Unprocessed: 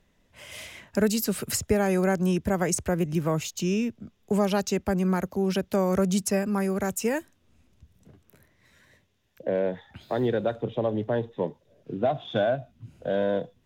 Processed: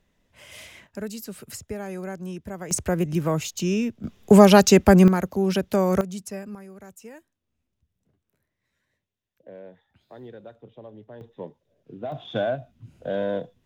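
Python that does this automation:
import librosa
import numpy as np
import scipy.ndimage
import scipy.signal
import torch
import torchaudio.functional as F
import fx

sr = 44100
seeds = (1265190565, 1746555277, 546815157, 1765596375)

y = fx.gain(x, sr, db=fx.steps((0.0, -2.5), (0.87, -10.0), (2.71, 2.0), (4.04, 12.0), (5.08, 3.0), (6.01, -9.5), (6.55, -17.0), (11.21, -8.5), (12.12, -1.0)))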